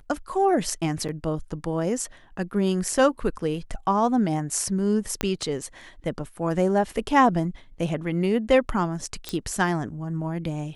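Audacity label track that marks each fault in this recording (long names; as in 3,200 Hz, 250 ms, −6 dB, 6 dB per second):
1.080000	1.090000	drop-out 7.5 ms
5.210000	5.210000	click −9 dBFS
9.290000	9.290000	click −12 dBFS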